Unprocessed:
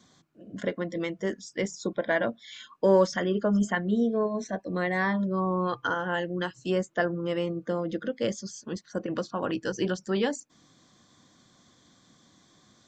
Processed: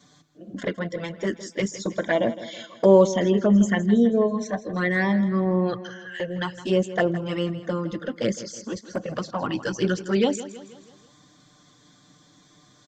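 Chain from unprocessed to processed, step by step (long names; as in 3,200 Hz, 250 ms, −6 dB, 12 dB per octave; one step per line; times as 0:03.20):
0:05.78–0:06.20: Chebyshev high-pass with heavy ripple 1,600 Hz, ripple 6 dB
flanger swept by the level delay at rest 7.1 ms, full sweep at −21.5 dBFS
repeating echo 162 ms, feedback 49%, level −14.5 dB
level +7 dB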